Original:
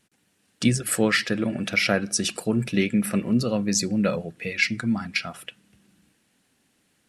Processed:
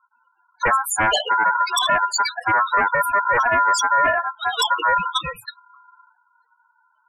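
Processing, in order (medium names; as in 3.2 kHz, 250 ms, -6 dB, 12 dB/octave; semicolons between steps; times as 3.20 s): loudest bins only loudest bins 4; sine folder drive 11 dB, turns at -11 dBFS; ring modulator 1.2 kHz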